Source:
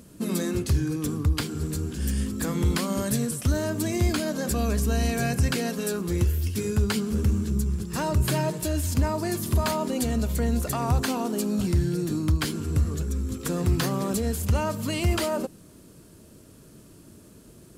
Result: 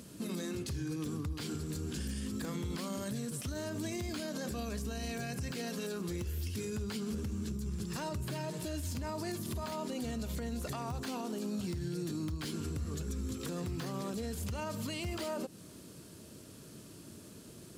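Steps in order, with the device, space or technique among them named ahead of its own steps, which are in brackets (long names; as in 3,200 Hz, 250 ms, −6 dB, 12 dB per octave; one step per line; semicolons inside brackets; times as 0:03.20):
broadcast voice chain (high-pass filter 77 Hz 12 dB per octave; de-essing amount 65%; downward compressor 4 to 1, threshold −32 dBFS, peak gain reduction 11.5 dB; parametric band 4,100 Hz +5 dB 1.8 octaves; brickwall limiter −28 dBFS, peak gain reduction 7 dB)
level −1.5 dB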